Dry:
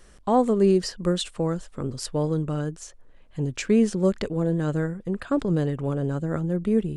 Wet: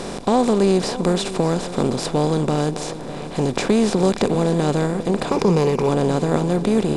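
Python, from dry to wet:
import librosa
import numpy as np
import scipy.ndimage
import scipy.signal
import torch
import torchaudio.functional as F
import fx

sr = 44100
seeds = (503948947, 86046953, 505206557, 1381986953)

y = fx.bin_compress(x, sr, power=0.4)
y = fx.ripple_eq(y, sr, per_octave=0.81, db=9, at=(5.29, 5.89))
y = y + 10.0 ** (-14.5 / 20.0) * np.pad(y, (int(594 * sr / 1000.0), 0))[:len(y)]
y = fx.band_squash(y, sr, depth_pct=40, at=(3.55, 4.35))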